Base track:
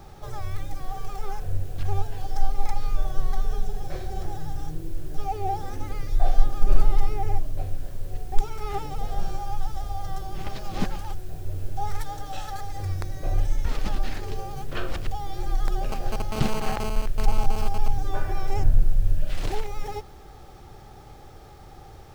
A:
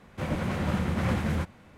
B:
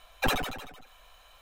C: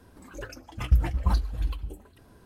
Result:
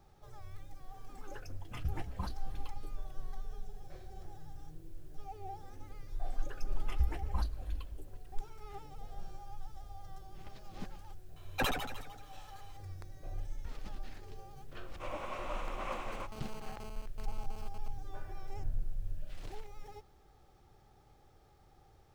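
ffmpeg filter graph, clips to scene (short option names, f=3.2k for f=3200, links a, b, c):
-filter_complex "[3:a]asplit=2[a][b];[0:a]volume=-17.5dB[c];[a]highpass=88[d];[b]equalizer=f=130:t=o:w=0.77:g=-12.5[e];[1:a]highpass=f=330:w=0.5412,highpass=f=330:w=1.3066,equalizer=f=420:t=q:w=4:g=-5,equalizer=f=600:t=q:w=4:g=6,equalizer=f=1.1k:t=q:w=4:g=10,equalizer=f=1.7k:t=q:w=4:g=-6,equalizer=f=2.6k:t=q:w=4:g=6,equalizer=f=4.6k:t=q:w=4:g=-6,lowpass=f=9.2k:w=0.5412,lowpass=f=9.2k:w=1.3066[f];[d]atrim=end=2.45,asetpts=PTS-STARTPTS,volume=-10.5dB,afade=t=in:d=0.004:c=hsin,afade=t=out:st=2.446:d=0.004:c=hsin,adelay=930[g];[e]atrim=end=2.45,asetpts=PTS-STARTPTS,volume=-10dB,afade=t=in:d=0.004:c=hsin,afade=t=out:st=2.446:d=0.004:c=hsin,adelay=6080[h];[2:a]atrim=end=1.41,asetpts=PTS-STARTPTS,volume=-5.5dB,afade=t=in:d=0.004:c=hsin,afade=t=out:st=1.406:d=0.004:c=hsin,adelay=11360[i];[f]atrim=end=1.77,asetpts=PTS-STARTPTS,volume=-10dB,afade=t=in:d=0.004:c=hsin,afade=t=out:st=1.766:d=0.004:c=hsin,adelay=14820[j];[c][g][h][i][j]amix=inputs=5:normalize=0"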